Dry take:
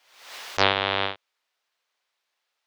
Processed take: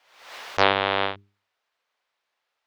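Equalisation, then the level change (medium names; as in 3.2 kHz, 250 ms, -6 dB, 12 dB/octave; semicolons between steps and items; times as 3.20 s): treble shelf 3.4 kHz -10.5 dB; hum notches 50/100/150/200/250/300/350/400 Hz; +3.5 dB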